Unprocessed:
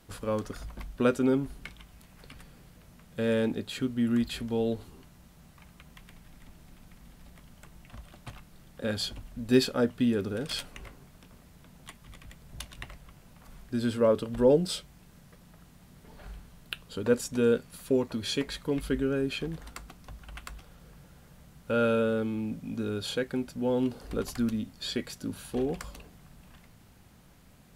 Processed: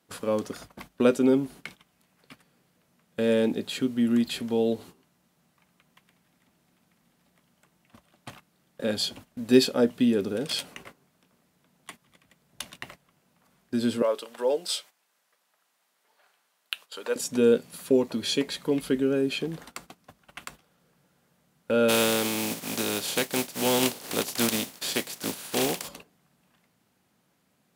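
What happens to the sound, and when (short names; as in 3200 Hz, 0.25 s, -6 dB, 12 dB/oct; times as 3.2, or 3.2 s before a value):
14.02–17.16 HPF 740 Hz
21.88–25.87 spectral contrast lowered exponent 0.43
whole clip: HPF 190 Hz 12 dB/oct; gate -49 dBFS, range -14 dB; dynamic EQ 1400 Hz, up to -6 dB, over -48 dBFS, Q 1.4; gain +5 dB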